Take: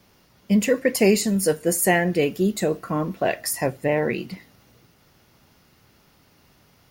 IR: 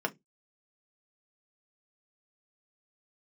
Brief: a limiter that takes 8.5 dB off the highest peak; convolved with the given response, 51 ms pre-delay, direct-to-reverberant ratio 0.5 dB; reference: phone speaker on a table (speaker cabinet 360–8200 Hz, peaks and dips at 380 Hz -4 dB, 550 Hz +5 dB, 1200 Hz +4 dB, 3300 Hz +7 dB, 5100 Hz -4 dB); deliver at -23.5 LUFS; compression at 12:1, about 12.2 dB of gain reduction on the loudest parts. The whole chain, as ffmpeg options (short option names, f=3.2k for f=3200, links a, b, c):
-filter_complex "[0:a]acompressor=threshold=-26dB:ratio=12,alimiter=level_in=0.5dB:limit=-24dB:level=0:latency=1,volume=-0.5dB,asplit=2[a][b];[1:a]atrim=start_sample=2205,adelay=51[c];[b][c]afir=irnorm=-1:irlink=0,volume=-7dB[d];[a][d]amix=inputs=2:normalize=0,highpass=f=360:w=0.5412,highpass=f=360:w=1.3066,equalizer=f=380:t=q:w=4:g=-4,equalizer=f=550:t=q:w=4:g=5,equalizer=f=1.2k:t=q:w=4:g=4,equalizer=f=3.3k:t=q:w=4:g=7,equalizer=f=5.1k:t=q:w=4:g=-4,lowpass=f=8.2k:w=0.5412,lowpass=f=8.2k:w=1.3066,volume=9.5dB"